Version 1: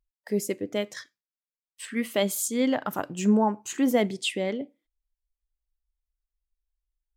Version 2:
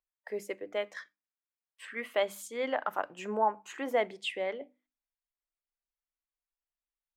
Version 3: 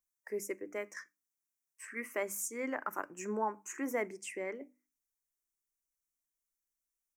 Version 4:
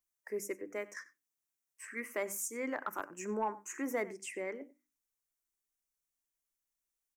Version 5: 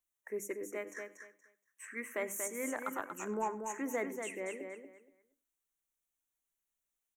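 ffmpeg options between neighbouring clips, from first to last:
ffmpeg -i in.wav -filter_complex "[0:a]acrossover=split=480 2700:gain=0.0794 1 0.141[link_01][link_02][link_03];[link_01][link_02][link_03]amix=inputs=3:normalize=0,bandreject=frequency=50:width_type=h:width=6,bandreject=frequency=100:width_type=h:width=6,bandreject=frequency=150:width_type=h:width=6,bandreject=frequency=200:width_type=h:width=6,bandreject=frequency=250:width_type=h:width=6,bandreject=frequency=300:width_type=h:width=6" out.wav
ffmpeg -i in.wav -af "firequalizer=gain_entry='entry(150,0);entry(340,6);entry(490,-4);entry(730,-9);entry(1000,-1);entry(2300,0);entry(3500,-24);entry(5700,10)':delay=0.05:min_phase=1,volume=-2.5dB" out.wav
ffmpeg -i in.wav -filter_complex "[0:a]asplit=2[link_01][link_02];[link_02]adelay=93.29,volume=-19dB,highshelf=frequency=4000:gain=-2.1[link_03];[link_01][link_03]amix=inputs=2:normalize=0,asoftclip=type=tanh:threshold=-22dB" out.wav
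ffmpeg -i in.wav -af "asuperstop=centerf=4900:order=4:qfactor=3.1,aecho=1:1:236|472|708:0.501|0.105|0.0221,volume=-1dB" out.wav

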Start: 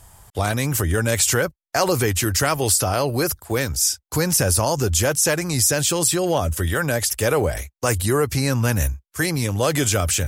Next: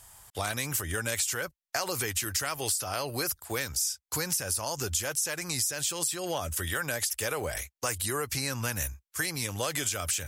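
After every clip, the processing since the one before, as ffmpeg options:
ffmpeg -i in.wav -af "tiltshelf=frequency=800:gain=-6,acompressor=threshold=-20dB:ratio=6,volume=-7dB" out.wav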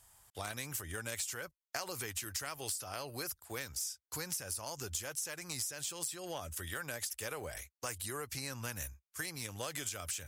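ffmpeg -i in.wav -af "aeval=exprs='0.2*(cos(1*acos(clip(val(0)/0.2,-1,1)))-cos(1*PI/2))+0.0316*(cos(3*acos(clip(val(0)/0.2,-1,1)))-cos(3*PI/2))':channel_layout=same,volume=-5dB" out.wav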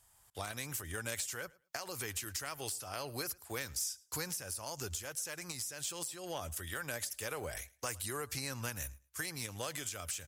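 ffmpeg -i in.wav -af "alimiter=level_in=0.5dB:limit=-24dB:level=0:latency=1:release=393,volume=-0.5dB,dynaudnorm=framelen=130:gausssize=5:maxgain=6dB,aecho=1:1:109|218:0.0668|0.012,volume=-4dB" out.wav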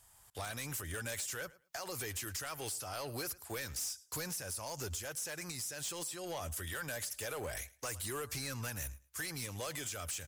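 ffmpeg -i in.wav -af "asoftclip=type=tanh:threshold=-38dB,volume=3.5dB" out.wav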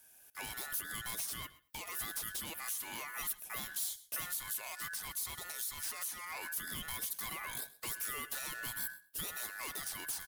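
ffmpeg -i in.wav -af "aeval=exprs='val(0)*sin(2*PI*1600*n/s)':channel_layout=same,aexciter=amount=2.8:drive=5.5:freq=10000,aecho=1:1:128:0.0944" out.wav

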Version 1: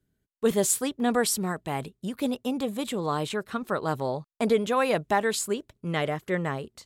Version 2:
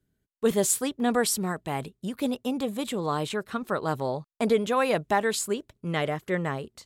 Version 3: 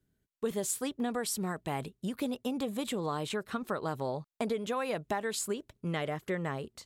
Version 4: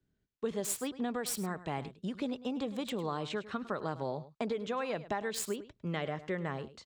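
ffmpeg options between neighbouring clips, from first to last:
ffmpeg -i in.wav -af anull out.wav
ffmpeg -i in.wav -af "acompressor=threshold=-28dB:ratio=6,volume=-1.5dB" out.wav
ffmpeg -i in.wav -filter_complex "[0:a]acrossover=split=120|6900[link_01][link_02][link_03];[link_03]acrusher=bits=5:mix=0:aa=0.000001[link_04];[link_01][link_02][link_04]amix=inputs=3:normalize=0,aecho=1:1:104:0.168,volume=-2dB" out.wav

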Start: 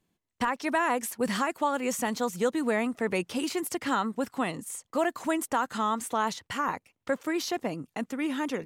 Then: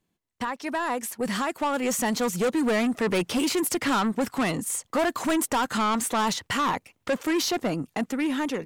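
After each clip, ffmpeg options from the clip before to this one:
ffmpeg -i in.wav -af "dynaudnorm=framelen=720:gausssize=5:maxgain=11.5dB,asoftclip=type=tanh:threshold=-19dB,volume=-1dB" out.wav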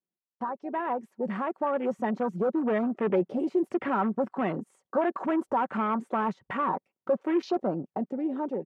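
ffmpeg -i in.wav -af "afwtdn=0.0316,bandpass=frequency=510:width_type=q:width=0.66:csg=0,aecho=1:1:5.3:0.34" out.wav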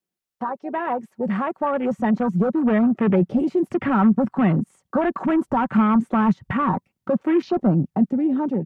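ffmpeg -i in.wav -filter_complex "[0:a]bandreject=frequency=1000:width=22,asubboost=boost=9.5:cutoff=150,acrossover=split=310|2800[link_01][link_02][link_03];[link_03]alimiter=level_in=20.5dB:limit=-24dB:level=0:latency=1:release=174,volume=-20.5dB[link_04];[link_01][link_02][link_04]amix=inputs=3:normalize=0,volume=7dB" out.wav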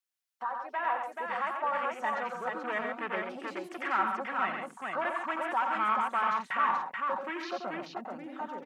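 ffmpeg -i in.wav -af "highpass=1100,aecho=1:1:89|136|432:0.501|0.447|0.668,volume=-2.5dB" out.wav

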